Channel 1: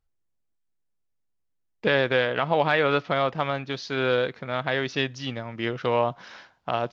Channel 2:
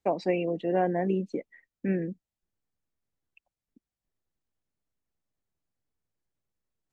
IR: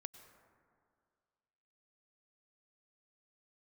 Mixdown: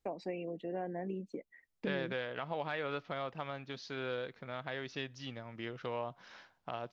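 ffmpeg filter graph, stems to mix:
-filter_complex "[0:a]acompressor=threshold=-37dB:ratio=1.5,volume=-9dB[link_01];[1:a]acompressor=threshold=-44dB:ratio=2,volume=-1.5dB[link_02];[link_01][link_02]amix=inputs=2:normalize=0"

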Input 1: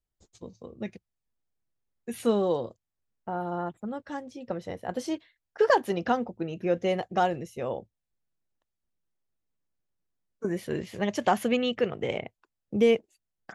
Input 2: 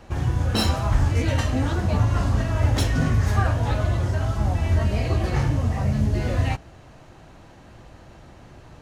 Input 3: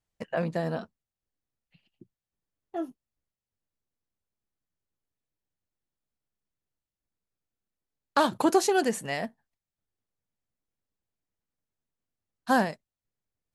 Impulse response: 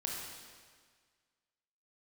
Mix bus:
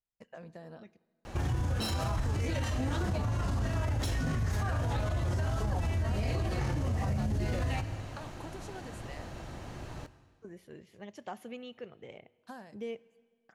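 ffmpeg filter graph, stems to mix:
-filter_complex "[0:a]volume=-19dB,asplit=2[link_01][link_02];[link_02]volume=-19.5dB[link_03];[1:a]highshelf=frequency=5800:gain=4,acompressor=threshold=-25dB:ratio=6,adelay=1250,volume=1dB,asplit=2[link_04][link_05];[link_05]volume=-12dB[link_06];[2:a]acompressor=threshold=-29dB:ratio=6,volume=-15.5dB,asplit=2[link_07][link_08];[link_08]volume=-19.5dB[link_09];[3:a]atrim=start_sample=2205[link_10];[link_03][link_06][link_09]amix=inputs=3:normalize=0[link_11];[link_11][link_10]afir=irnorm=-1:irlink=0[link_12];[link_01][link_04][link_07][link_12]amix=inputs=4:normalize=0,alimiter=limit=-24dB:level=0:latency=1:release=32"

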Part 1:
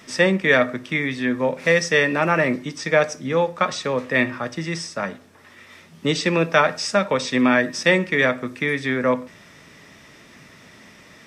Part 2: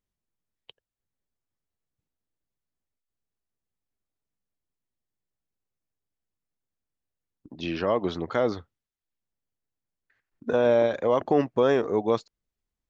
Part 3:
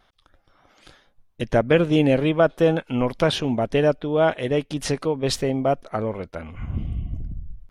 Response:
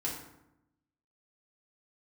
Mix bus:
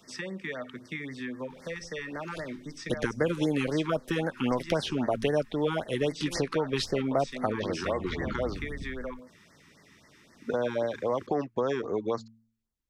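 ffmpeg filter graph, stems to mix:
-filter_complex "[0:a]acompressor=threshold=-23dB:ratio=5,volume=-10dB[link_01];[1:a]volume=-2.5dB[link_02];[2:a]adelay=1500,volume=2.5dB[link_03];[link_01][link_02][link_03]amix=inputs=3:normalize=0,bandreject=frequency=112.2:width_type=h:width=4,bandreject=frequency=224.4:width_type=h:width=4,acrossover=split=200|830|5500[link_04][link_05][link_06][link_07];[link_04]acompressor=threshold=-40dB:ratio=4[link_08];[link_05]acompressor=threshold=-28dB:ratio=4[link_09];[link_06]acompressor=threshold=-32dB:ratio=4[link_10];[link_07]acompressor=threshold=-49dB:ratio=4[link_11];[link_08][link_09][link_10][link_11]amix=inputs=4:normalize=0,afftfilt=real='re*(1-between(b*sr/1024,560*pow(3100/560,0.5+0.5*sin(2*PI*3.8*pts/sr))/1.41,560*pow(3100/560,0.5+0.5*sin(2*PI*3.8*pts/sr))*1.41))':imag='im*(1-between(b*sr/1024,560*pow(3100/560,0.5+0.5*sin(2*PI*3.8*pts/sr))/1.41,560*pow(3100/560,0.5+0.5*sin(2*PI*3.8*pts/sr))*1.41))':win_size=1024:overlap=0.75"

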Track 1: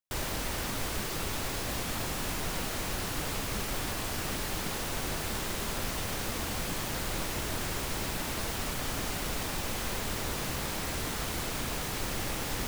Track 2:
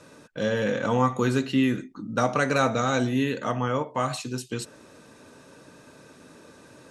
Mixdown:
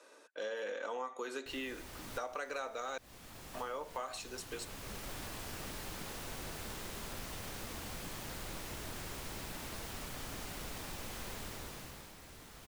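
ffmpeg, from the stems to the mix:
ffmpeg -i stem1.wav -i stem2.wav -filter_complex "[0:a]adelay=1350,volume=-10dB,afade=type=out:start_time=11.38:duration=0.76:silence=0.316228[link_01];[1:a]highpass=frequency=380:width=0.5412,highpass=frequency=380:width=1.3066,volume=-7.5dB,asplit=3[link_02][link_03][link_04];[link_02]atrim=end=2.98,asetpts=PTS-STARTPTS,afade=type=out:start_time=2.976:duration=0.004:curve=hsin[link_05];[link_03]atrim=start=2.98:end=3.54,asetpts=PTS-STARTPTS,volume=0[link_06];[link_04]atrim=start=3.54,asetpts=PTS-STARTPTS,afade=type=in:duration=0.004:curve=hsin[link_07];[link_05][link_06][link_07]concat=n=3:v=0:a=1,asplit=2[link_08][link_09];[link_09]apad=whole_len=618322[link_10];[link_01][link_10]sidechaincompress=threshold=-41dB:ratio=8:attack=32:release=1120[link_11];[link_11][link_08]amix=inputs=2:normalize=0,acompressor=threshold=-37dB:ratio=6" out.wav

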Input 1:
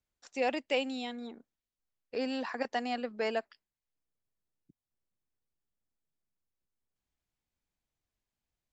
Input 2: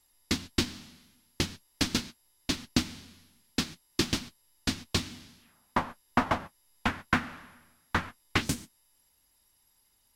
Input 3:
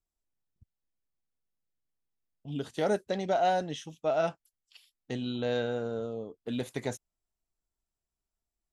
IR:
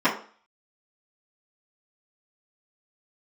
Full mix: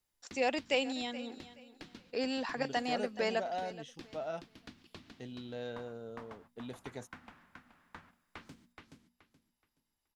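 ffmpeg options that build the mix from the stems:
-filter_complex "[0:a]highshelf=frequency=4800:gain=8.5,volume=-1dB,asplit=2[link_01][link_02];[link_02]volume=-16dB[link_03];[1:a]highshelf=frequency=4800:gain=-10,bandreject=frequency=60:width_type=h:width=6,bandreject=frequency=120:width_type=h:width=6,bandreject=frequency=180:width_type=h:width=6,bandreject=frequency=240:width_type=h:width=6,acrossover=split=140|4600[link_04][link_05][link_06];[link_04]acompressor=threshold=-50dB:ratio=4[link_07];[link_05]acompressor=threshold=-36dB:ratio=4[link_08];[link_06]acompressor=threshold=-56dB:ratio=4[link_09];[link_07][link_08][link_09]amix=inputs=3:normalize=0,volume=-13.5dB,asplit=2[link_10][link_11];[link_11]volume=-4.5dB[link_12];[2:a]adelay=100,volume=-11.5dB[link_13];[link_03][link_12]amix=inputs=2:normalize=0,aecho=0:1:425|850|1275|1700:1|0.25|0.0625|0.0156[link_14];[link_01][link_10][link_13][link_14]amix=inputs=4:normalize=0"

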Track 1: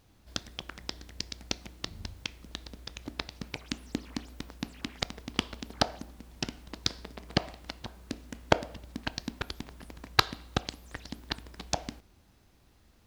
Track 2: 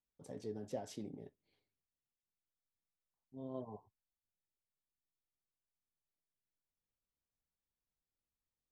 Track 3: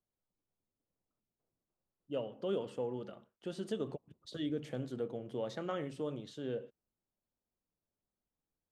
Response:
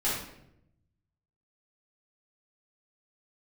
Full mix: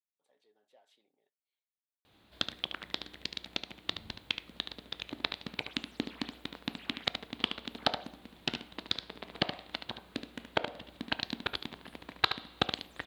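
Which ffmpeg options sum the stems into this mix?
-filter_complex "[0:a]highpass=frequency=250:poles=1,alimiter=limit=-11dB:level=0:latency=1:release=316,adelay=2050,volume=1dB,asplit=2[link_01][link_02];[link_02]volume=-8.5dB[link_03];[1:a]highpass=880,volume=-14dB[link_04];[link_03]aecho=0:1:73:1[link_05];[link_01][link_04][link_05]amix=inputs=3:normalize=0,highshelf=frequency=4600:width_type=q:width=3:gain=-6.5"

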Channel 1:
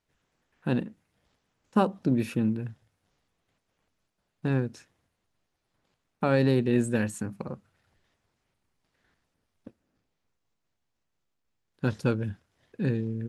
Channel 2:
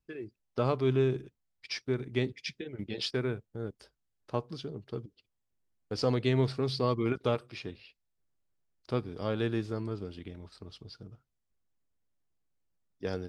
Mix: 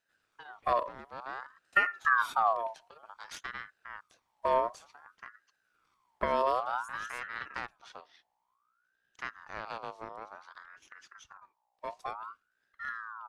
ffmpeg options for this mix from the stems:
ffmpeg -i stem1.wav -i stem2.wav -filter_complex "[0:a]aecho=1:1:0.9:0.56,volume=-0.5dB,afade=type=out:start_time=6.19:duration=0.65:silence=0.266073,asplit=2[link_01][link_02];[1:a]aeval=exprs='0.2*(cos(1*acos(clip(val(0)/0.2,-1,1)))-cos(1*PI/2))+0.0794*(cos(4*acos(clip(val(0)/0.2,-1,1)))-cos(4*PI/2))':channel_layout=same,acompressor=threshold=-48dB:ratio=1.5,aeval=exprs='val(0)+0.000126*(sin(2*PI*60*n/s)+sin(2*PI*2*60*n/s)/2+sin(2*PI*3*60*n/s)/3+sin(2*PI*4*60*n/s)/4+sin(2*PI*5*60*n/s)/5)':channel_layout=same,adelay=300,volume=-1.5dB[link_03];[link_02]apad=whole_len=599242[link_04];[link_03][link_04]sidechaincompress=threshold=-32dB:ratio=8:attack=16:release=888[link_05];[link_01][link_05]amix=inputs=2:normalize=0,acrossover=split=370[link_06][link_07];[link_07]acompressor=threshold=-30dB:ratio=10[link_08];[link_06][link_08]amix=inputs=2:normalize=0,aeval=exprs='val(0)*sin(2*PI*1200*n/s+1200*0.35/0.55*sin(2*PI*0.55*n/s))':channel_layout=same" out.wav

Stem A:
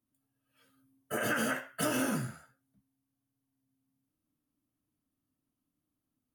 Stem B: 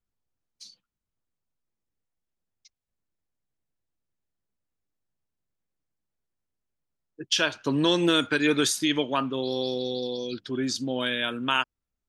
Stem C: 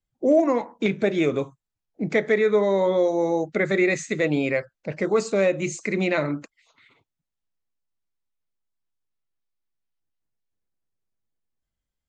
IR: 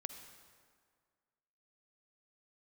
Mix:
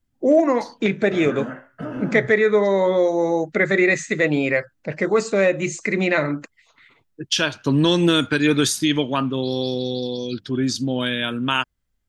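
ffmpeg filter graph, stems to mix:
-filter_complex "[0:a]lowpass=1500,lowshelf=frequency=260:gain=9.5,volume=-1dB[link_01];[1:a]bass=frequency=250:gain=9,treble=frequency=4000:gain=1,volume=3dB[link_02];[2:a]equalizer=frequency=1800:width_type=o:width=0.75:gain=5.5,bandreject=frequency=2200:width=23,volume=2.5dB[link_03];[link_01][link_02][link_03]amix=inputs=3:normalize=0"

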